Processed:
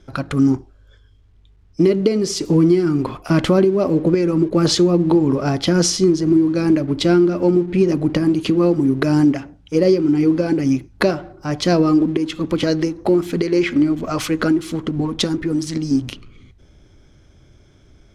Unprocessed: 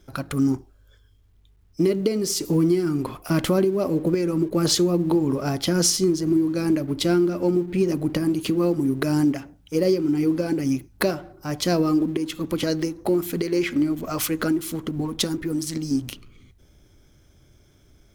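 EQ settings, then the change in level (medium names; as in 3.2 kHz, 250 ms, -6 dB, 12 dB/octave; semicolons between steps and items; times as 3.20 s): distance through air 78 m; +6.0 dB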